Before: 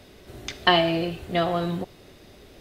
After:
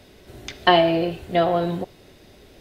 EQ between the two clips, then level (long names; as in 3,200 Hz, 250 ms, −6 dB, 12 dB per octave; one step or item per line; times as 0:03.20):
notch filter 1,200 Hz, Q 15
dynamic equaliser 550 Hz, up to +6 dB, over −34 dBFS, Q 0.73
dynamic equaliser 7,500 Hz, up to −5 dB, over −44 dBFS, Q 1
0.0 dB